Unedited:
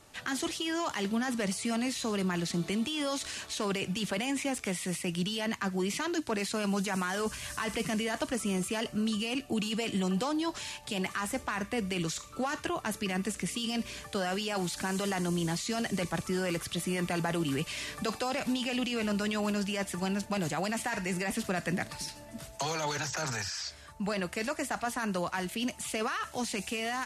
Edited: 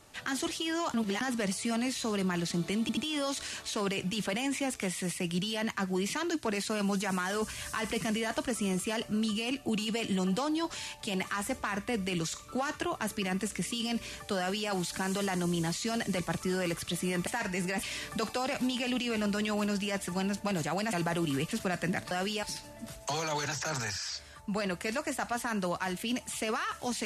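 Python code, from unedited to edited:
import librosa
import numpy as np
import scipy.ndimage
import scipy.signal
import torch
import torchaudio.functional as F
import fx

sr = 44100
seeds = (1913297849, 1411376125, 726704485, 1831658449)

y = fx.edit(x, sr, fx.reverse_span(start_s=0.94, length_s=0.27),
    fx.stutter(start_s=2.81, slice_s=0.08, count=3),
    fx.duplicate(start_s=14.22, length_s=0.32, to_s=21.95),
    fx.swap(start_s=17.11, length_s=0.58, other_s=20.79, other_length_s=0.56), tone=tone)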